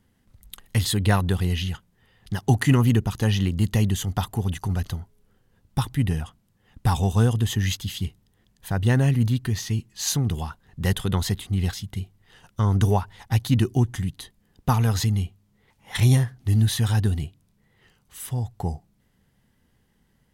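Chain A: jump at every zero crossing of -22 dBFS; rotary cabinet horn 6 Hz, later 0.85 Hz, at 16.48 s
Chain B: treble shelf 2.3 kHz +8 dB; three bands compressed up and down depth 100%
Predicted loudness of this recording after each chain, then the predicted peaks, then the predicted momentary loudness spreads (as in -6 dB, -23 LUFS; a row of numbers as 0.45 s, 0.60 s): -23.5 LUFS, -23.5 LUFS; -5.0 dBFS, -3.5 dBFS; 10 LU, 13 LU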